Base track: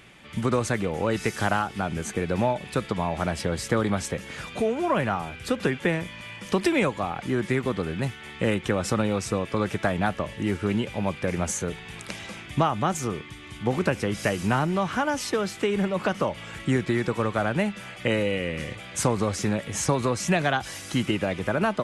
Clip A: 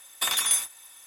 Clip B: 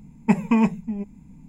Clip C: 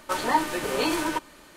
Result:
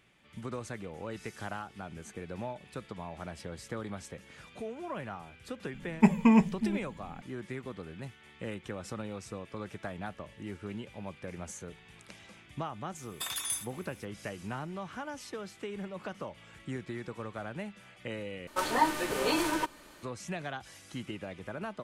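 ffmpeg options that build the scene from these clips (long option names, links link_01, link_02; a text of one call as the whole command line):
ffmpeg -i bed.wav -i cue0.wav -i cue1.wav -i cue2.wav -filter_complex "[0:a]volume=-15dB,asplit=2[link_01][link_02];[link_01]atrim=end=18.474[link_03];[3:a]atrim=end=1.56,asetpts=PTS-STARTPTS,volume=-3.5dB[link_04];[link_02]atrim=start=20.026[link_05];[2:a]atrim=end=1.48,asetpts=PTS-STARTPTS,volume=-3dB,afade=type=in:duration=0.004:curve=hsin,afade=type=out:start_time=1.476:duration=0.004:curve=hsin,adelay=5740[link_06];[1:a]atrim=end=1.06,asetpts=PTS-STARTPTS,volume=-11dB,afade=type=in:duration=0.004:curve=hsin,afade=type=out:start_time=1.056:duration=0.004:curve=hsin,adelay=12990[link_07];[link_03][link_04]acrossfade=duration=0.004:curve1=hsin:curve2=hsin[link_08];[link_08][link_05]acrossfade=duration=0.004:curve1=hsin:curve2=hsin[link_09];[link_09][link_06][link_07]amix=inputs=3:normalize=0" out.wav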